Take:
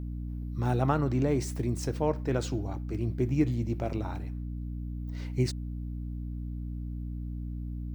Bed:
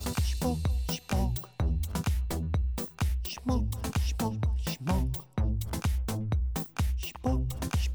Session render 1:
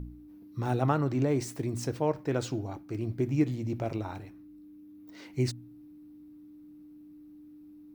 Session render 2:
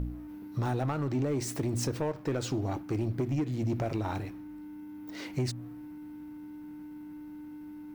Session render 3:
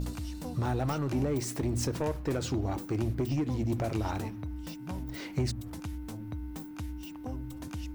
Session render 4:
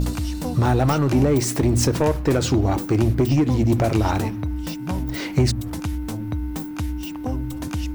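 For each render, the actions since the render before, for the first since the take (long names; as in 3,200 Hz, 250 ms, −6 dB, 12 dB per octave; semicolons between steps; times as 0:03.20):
hum removal 60 Hz, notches 4
downward compressor 10 to 1, threshold −32 dBFS, peak gain reduction 12.5 dB; leveller curve on the samples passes 2
mix in bed −10.5 dB
level +12 dB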